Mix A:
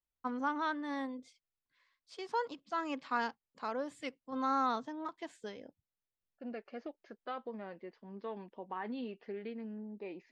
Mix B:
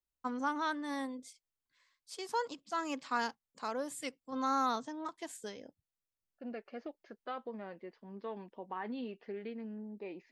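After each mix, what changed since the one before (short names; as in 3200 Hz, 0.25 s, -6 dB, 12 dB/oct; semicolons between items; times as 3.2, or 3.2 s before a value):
first voice: remove LPF 3700 Hz 12 dB/oct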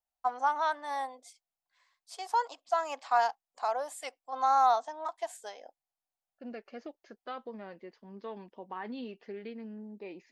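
first voice: add resonant high-pass 730 Hz, resonance Q 6.5; second voice: remove air absorption 130 m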